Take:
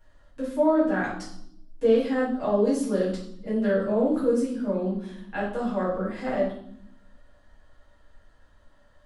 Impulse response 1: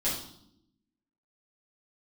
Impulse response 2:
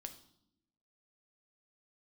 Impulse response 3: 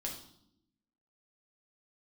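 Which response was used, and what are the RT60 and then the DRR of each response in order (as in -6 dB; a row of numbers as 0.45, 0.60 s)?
1; 0.75, 0.75, 0.75 s; -10.0, 6.5, -1.5 dB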